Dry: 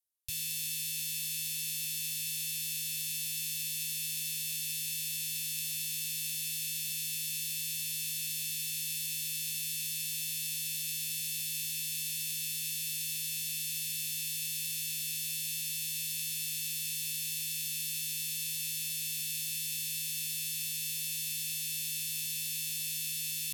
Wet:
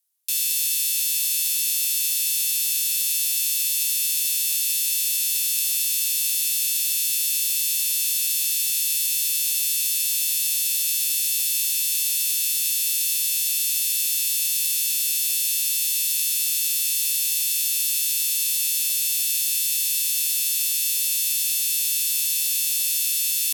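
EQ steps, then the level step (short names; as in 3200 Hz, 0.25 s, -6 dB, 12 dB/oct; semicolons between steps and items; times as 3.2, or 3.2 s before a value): HPF 580 Hz 12 dB/oct; high shelf 3100 Hz +10 dB; +4.5 dB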